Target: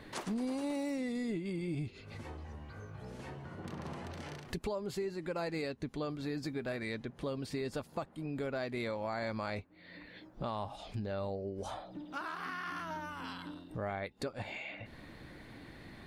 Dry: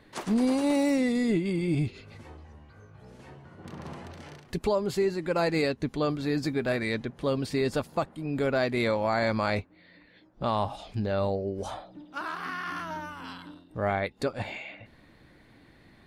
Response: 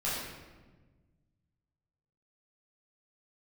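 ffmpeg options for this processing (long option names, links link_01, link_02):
-af "acompressor=threshold=-48dB:ratio=2.5,volume=5dB"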